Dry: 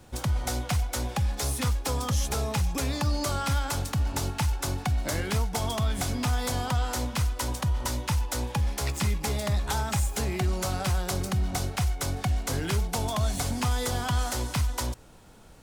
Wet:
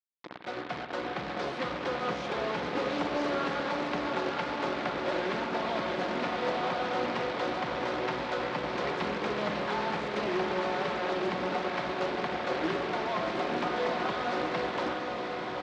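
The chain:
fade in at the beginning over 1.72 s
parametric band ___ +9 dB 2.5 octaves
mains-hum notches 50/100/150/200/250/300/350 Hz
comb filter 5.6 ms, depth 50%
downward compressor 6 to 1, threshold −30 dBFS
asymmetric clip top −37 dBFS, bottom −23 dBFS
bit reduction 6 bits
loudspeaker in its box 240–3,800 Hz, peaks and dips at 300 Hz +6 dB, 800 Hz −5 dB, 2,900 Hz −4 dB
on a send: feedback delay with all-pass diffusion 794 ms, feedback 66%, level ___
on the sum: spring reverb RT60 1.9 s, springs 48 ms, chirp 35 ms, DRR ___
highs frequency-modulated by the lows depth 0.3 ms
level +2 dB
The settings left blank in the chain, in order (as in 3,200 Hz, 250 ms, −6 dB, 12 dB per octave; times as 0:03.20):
630 Hz, −4 dB, 6 dB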